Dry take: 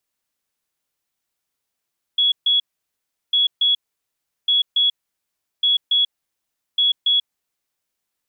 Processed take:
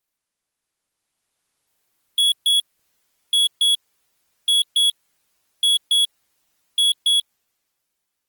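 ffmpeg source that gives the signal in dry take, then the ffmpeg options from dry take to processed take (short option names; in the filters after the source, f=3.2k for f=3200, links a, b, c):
-f lavfi -i "aevalsrc='0.211*sin(2*PI*3360*t)*clip(min(mod(mod(t,1.15),0.28),0.14-mod(mod(t,1.15),0.28))/0.005,0,1)*lt(mod(t,1.15),0.56)':d=5.75:s=44100"
-af "dynaudnorm=f=280:g=9:m=13dB,asoftclip=type=tanh:threshold=-15.5dB" -ar 48000 -c:a libopus -b:a 20k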